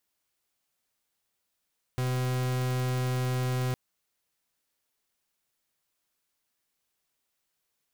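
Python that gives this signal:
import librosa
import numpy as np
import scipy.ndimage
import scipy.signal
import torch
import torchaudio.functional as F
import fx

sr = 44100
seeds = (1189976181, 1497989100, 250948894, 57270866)

y = fx.pulse(sr, length_s=1.76, hz=127.0, level_db=-28.5, duty_pct=43)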